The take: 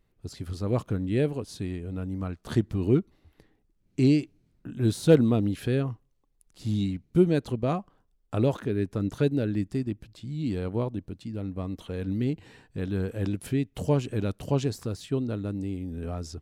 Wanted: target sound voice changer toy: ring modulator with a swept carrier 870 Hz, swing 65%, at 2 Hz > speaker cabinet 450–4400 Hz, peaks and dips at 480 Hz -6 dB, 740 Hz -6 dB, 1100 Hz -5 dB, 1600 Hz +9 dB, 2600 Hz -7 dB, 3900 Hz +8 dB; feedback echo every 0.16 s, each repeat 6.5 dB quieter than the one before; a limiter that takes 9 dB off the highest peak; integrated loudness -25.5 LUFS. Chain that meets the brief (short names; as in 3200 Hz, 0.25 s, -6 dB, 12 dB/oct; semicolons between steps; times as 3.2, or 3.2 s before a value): limiter -17 dBFS; feedback echo 0.16 s, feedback 47%, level -6.5 dB; ring modulator with a swept carrier 870 Hz, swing 65%, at 2 Hz; speaker cabinet 450–4400 Hz, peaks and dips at 480 Hz -6 dB, 740 Hz -6 dB, 1100 Hz -5 dB, 1600 Hz +9 dB, 2600 Hz -7 dB, 3900 Hz +8 dB; gain +5 dB